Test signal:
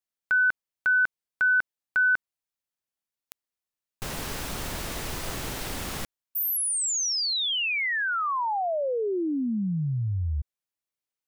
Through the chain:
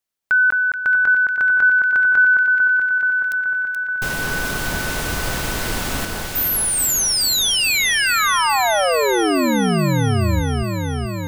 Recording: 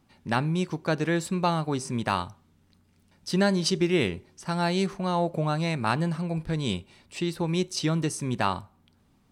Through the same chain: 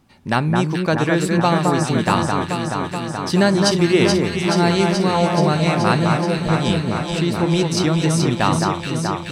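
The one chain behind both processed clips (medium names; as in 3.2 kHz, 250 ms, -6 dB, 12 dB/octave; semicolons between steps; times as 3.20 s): echo whose repeats swap between lows and highs 214 ms, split 1.8 kHz, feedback 86%, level -3 dB; trim +7 dB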